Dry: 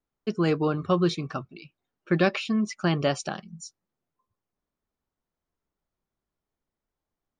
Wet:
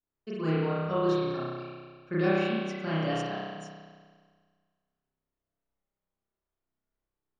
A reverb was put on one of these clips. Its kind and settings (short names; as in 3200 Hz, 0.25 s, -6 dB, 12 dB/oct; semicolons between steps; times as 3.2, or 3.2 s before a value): spring tank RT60 1.7 s, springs 31 ms, chirp 30 ms, DRR -9.5 dB; gain -13 dB